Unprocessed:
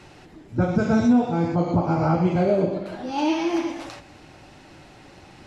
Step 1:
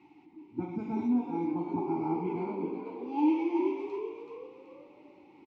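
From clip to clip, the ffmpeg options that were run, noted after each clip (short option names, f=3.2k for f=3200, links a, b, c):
-filter_complex "[0:a]asplit=3[a][b][c];[a]bandpass=f=300:t=q:w=8,volume=0dB[d];[b]bandpass=f=870:t=q:w=8,volume=-6dB[e];[c]bandpass=f=2.24k:t=q:w=8,volume=-9dB[f];[d][e][f]amix=inputs=3:normalize=0,asplit=5[g][h][i][j][k];[h]adelay=379,afreqshift=63,volume=-7dB[l];[i]adelay=758,afreqshift=126,volume=-15.4dB[m];[j]adelay=1137,afreqshift=189,volume=-23.8dB[n];[k]adelay=1516,afreqshift=252,volume=-32.2dB[o];[g][l][m][n][o]amix=inputs=5:normalize=0"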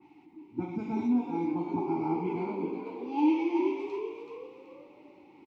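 -af "adynamicequalizer=threshold=0.00224:dfrequency=2100:dqfactor=0.7:tfrequency=2100:tqfactor=0.7:attack=5:release=100:ratio=0.375:range=2.5:mode=boostabove:tftype=highshelf,volume=1dB"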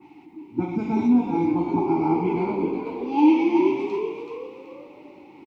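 -filter_complex "[0:a]asplit=5[a][b][c][d][e];[b]adelay=122,afreqshift=-43,volume=-20dB[f];[c]adelay=244,afreqshift=-86,volume=-25.4dB[g];[d]adelay=366,afreqshift=-129,volume=-30.7dB[h];[e]adelay=488,afreqshift=-172,volume=-36.1dB[i];[a][f][g][h][i]amix=inputs=5:normalize=0,volume=8.5dB"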